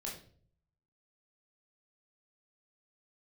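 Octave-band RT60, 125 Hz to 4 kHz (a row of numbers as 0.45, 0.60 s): 0.95, 0.70, 0.60, 0.40, 0.40, 0.40 s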